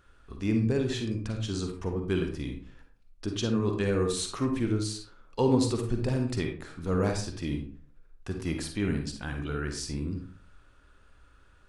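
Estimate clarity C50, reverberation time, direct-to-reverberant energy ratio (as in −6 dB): 5.0 dB, 0.45 s, 3.5 dB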